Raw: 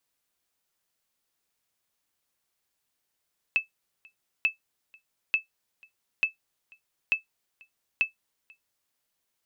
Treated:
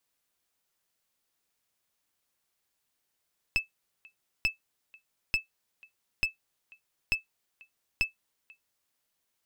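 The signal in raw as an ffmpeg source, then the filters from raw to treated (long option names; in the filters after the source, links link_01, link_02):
-f lavfi -i "aevalsrc='0.188*(sin(2*PI*2620*mod(t,0.89))*exp(-6.91*mod(t,0.89)/0.13)+0.0355*sin(2*PI*2620*max(mod(t,0.89)-0.49,0))*exp(-6.91*max(mod(t,0.89)-0.49,0)/0.13))':duration=5.34:sample_rate=44100"
-af "aeval=exprs='clip(val(0),-1,0.0335)':channel_layout=same"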